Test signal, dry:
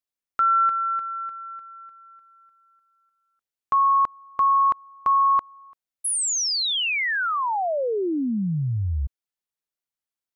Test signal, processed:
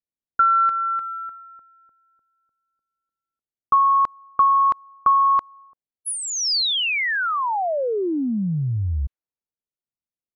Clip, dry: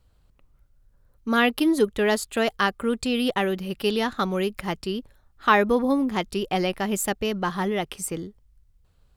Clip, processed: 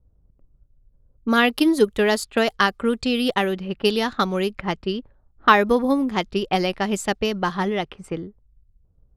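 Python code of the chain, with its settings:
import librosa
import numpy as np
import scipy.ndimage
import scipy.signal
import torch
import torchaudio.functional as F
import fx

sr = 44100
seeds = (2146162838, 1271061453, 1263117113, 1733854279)

y = fx.transient(x, sr, attack_db=4, sustain_db=-1)
y = fx.env_lowpass(y, sr, base_hz=450.0, full_db=-19.0)
y = fx.dynamic_eq(y, sr, hz=4800.0, q=2.0, threshold_db=-42.0, ratio=4.0, max_db=4)
y = y * librosa.db_to_amplitude(1.5)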